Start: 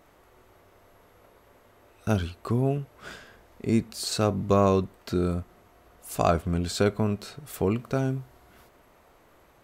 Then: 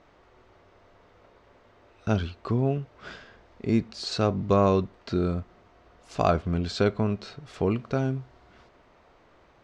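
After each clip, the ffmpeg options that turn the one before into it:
ffmpeg -i in.wav -af "lowpass=frequency=5600:width=0.5412,lowpass=frequency=5600:width=1.3066" out.wav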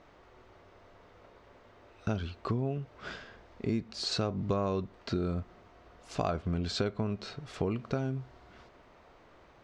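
ffmpeg -i in.wav -af "acompressor=threshold=-28dB:ratio=5" out.wav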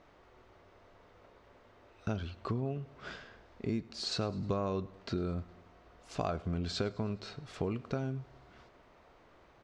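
ffmpeg -i in.wav -af "aecho=1:1:104|208|312|416:0.0794|0.0469|0.0277|0.0163,volume=-3dB" out.wav

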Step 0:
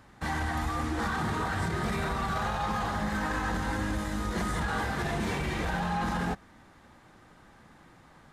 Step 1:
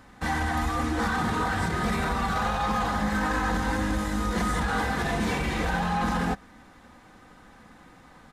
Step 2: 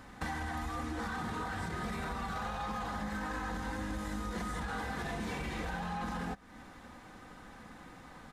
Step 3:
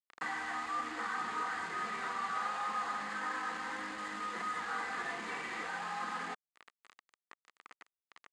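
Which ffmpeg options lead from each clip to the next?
ffmpeg -i in.wav -af "aecho=1:1:4:0.36,volume=3.5dB" out.wav
ffmpeg -i in.wav -af "acompressor=threshold=-36dB:ratio=5" out.wav
ffmpeg -i in.wav -af "acrusher=bits=6:mix=0:aa=0.000001,highpass=370,equalizer=frequency=580:width_type=q:width=4:gain=-5,equalizer=frequency=1200:width_type=q:width=4:gain=8,equalizer=frequency=1900:width_type=q:width=4:gain=7,equalizer=frequency=3700:width_type=q:width=4:gain=-3,equalizer=frequency=5700:width_type=q:width=4:gain=-9,lowpass=frequency=7300:width=0.5412,lowpass=frequency=7300:width=1.3066,volume=-2dB" out.wav

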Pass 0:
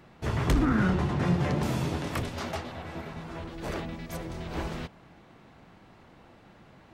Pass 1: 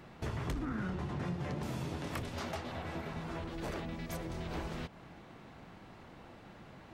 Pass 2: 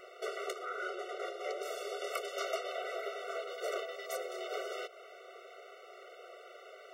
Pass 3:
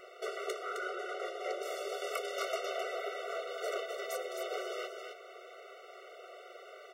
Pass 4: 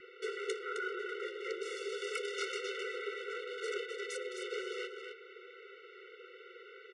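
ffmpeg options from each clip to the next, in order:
ffmpeg -i in.wav -af "acompressor=threshold=-38dB:ratio=4,volume=1dB" out.wav
ffmpeg -i in.wav -af "afftfilt=real='re*eq(mod(floor(b*sr/1024/380),2),1)':imag='im*eq(mod(floor(b*sr/1024/380),2),1)':win_size=1024:overlap=0.75,volume=7dB" out.wav
ffmpeg -i in.wav -af "aecho=1:1:262:0.531" out.wav
ffmpeg -i in.wav -filter_complex "[0:a]acrossover=split=4000[link_01][link_02];[link_02]aeval=exprs='sgn(val(0))*max(abs(val(0))-0.001,0)':channel_layout=same[link_03];[link_01][link_03]amix=inputs=2:normalize=0,asuperstop=centerf=820:order=20:qfactor=0.98,aresample=22050,aresample=44100,volume=2dB" out.wav

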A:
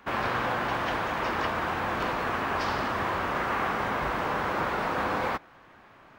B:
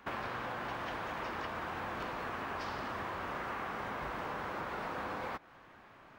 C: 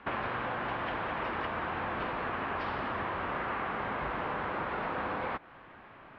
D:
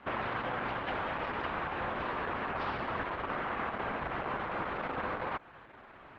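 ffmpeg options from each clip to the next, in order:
ffmpeg -i in.wav -af "acompressor=threshold=-33dB:ratio=6,volume=-3.5dB" out.wav
ffmpeg -i in.wav -af "lowpass=frequency=3400:width=0.5412,lowpass=frequency=3400:width=1.3066,volume=5dB" out.wav
ffmpeg -i in.wav -ar 48000 -c:a libopus -b:a 10k out.opus

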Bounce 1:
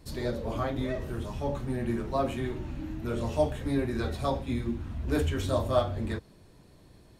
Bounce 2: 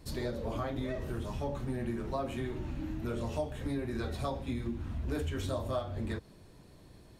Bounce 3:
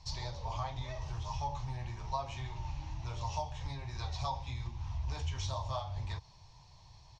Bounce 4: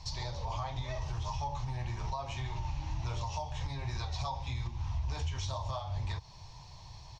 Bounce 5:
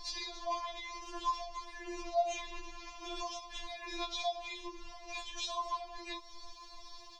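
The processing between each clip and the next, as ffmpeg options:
ffmpeg -i in.wav -af "acompressor=threshold=-32dB:ratio=4" out.wav
ffmpeg -i in.wav -af "firequalizer=gain_entry='entry(130,0);entry(220,-23);entry(340,-20);entry(510,-14);entry(900,9);entry(1400,-11);entry(2200,-1);entry(3700,2);entry(5800,10);entry(10000,-28)':delay=0.05:min_phase=1" out.wav
ffmpeg -i in.wav -af "alimiter=level_in=10.5dB:limit=-24dB:level=0:latency=1:release=274,volume=-10.5dB,volume=7.5dB" out.wav
ffmpeg -i in.wav -af "afftfilt=real='re*4*eq(mod(b,16),0)':imag='im*4*eq(mod(b,16),0)':win_size=2048:overlap=0.75,volume=4.5dB" out.wav

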